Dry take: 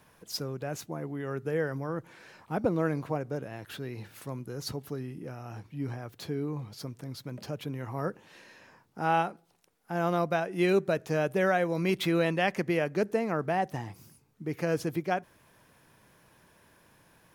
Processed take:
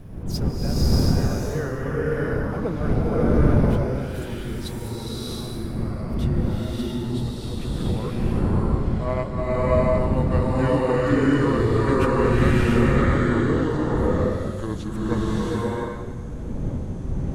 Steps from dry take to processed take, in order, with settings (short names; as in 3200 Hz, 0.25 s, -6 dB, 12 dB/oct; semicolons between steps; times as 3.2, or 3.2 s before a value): gliding pitch shift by -8.5 st starting unshifted; wind noise 160 Hz -33 dBFS; bloom reverb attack 0.68 s, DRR -8 dB